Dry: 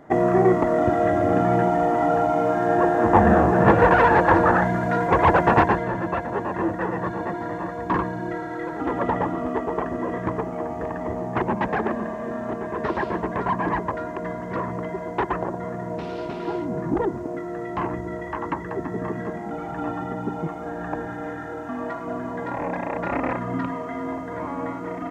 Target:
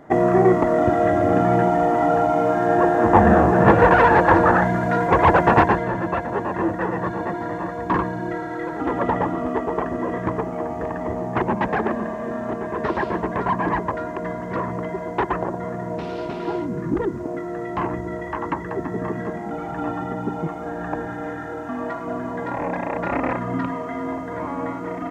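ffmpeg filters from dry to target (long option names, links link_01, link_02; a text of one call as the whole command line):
ffmpeg -i in.wav -filter_complex "[0:a]asettb=1/sr,asplit=3[link_01][link_02][link_03];[link_01]atrim=end=16.664[link_04];[link_02]atrim=start=16.66:end=17.2,asetpts=PTS-STARTPTS,afade=type=in:duration=0.004:curve=qsin,afade=type=out:start_time=0.536:duration=0.004:curve=qsin,equalizer=frequency=740:width_type=o:width=0.65:gain=-11.5[link_05];[link_03]atrim=start=17.196[link_06];[link_04][link_05]acrossfade=duration=0.004:curve1=hsin:curve2=qsin[link_07];[link_07][link_06]acrossfade=duration=0.004:curve1=qsin:curve2=hsin,volume=2dB" out.wav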